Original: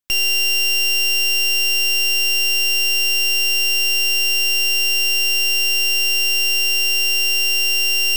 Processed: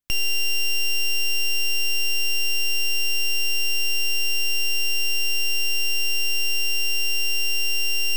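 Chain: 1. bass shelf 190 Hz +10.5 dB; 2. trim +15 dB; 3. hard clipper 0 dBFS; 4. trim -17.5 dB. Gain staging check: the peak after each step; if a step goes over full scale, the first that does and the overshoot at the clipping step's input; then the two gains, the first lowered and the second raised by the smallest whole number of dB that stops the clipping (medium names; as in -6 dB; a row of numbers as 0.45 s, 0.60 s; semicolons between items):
-10.0 dBFS, +5.0 dBFS, 0.0 dBFS, -17.5 dBFS; step 2, 5.0 dB; step 2 +10 dB, step 4 -12.5 dB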